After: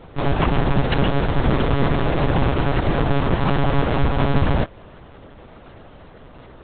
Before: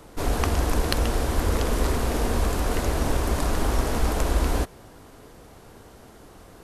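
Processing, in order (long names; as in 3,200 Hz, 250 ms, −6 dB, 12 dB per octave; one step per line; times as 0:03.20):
one-pitch LPC vocoder at 8 kHz 140 Hz
level +5 dB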